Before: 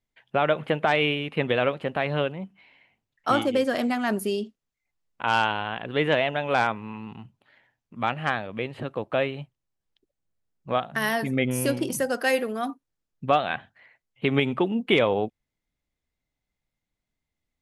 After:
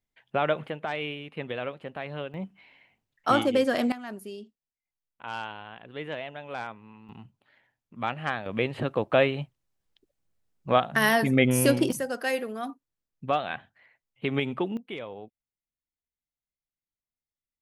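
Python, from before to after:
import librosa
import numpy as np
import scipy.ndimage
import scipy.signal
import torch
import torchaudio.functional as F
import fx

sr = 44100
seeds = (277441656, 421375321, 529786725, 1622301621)

y = fx.gain(x, sr, db=fx.steps((0.0, -3.0), (0.68, -10.0), (2.34, 0.0), (3.92, -13.0), (7.09, -4.0), (8.46, 3.5), (11.92, -5.0), (14.77, -17.0)))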